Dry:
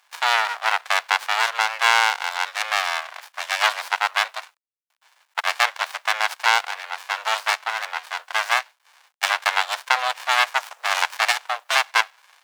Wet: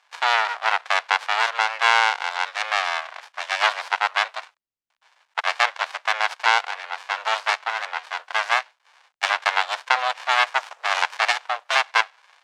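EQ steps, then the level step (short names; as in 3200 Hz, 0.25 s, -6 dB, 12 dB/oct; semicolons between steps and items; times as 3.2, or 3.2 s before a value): air absorption 71 m; low shelf 260 Hz +9.5 dB; 0.0 dB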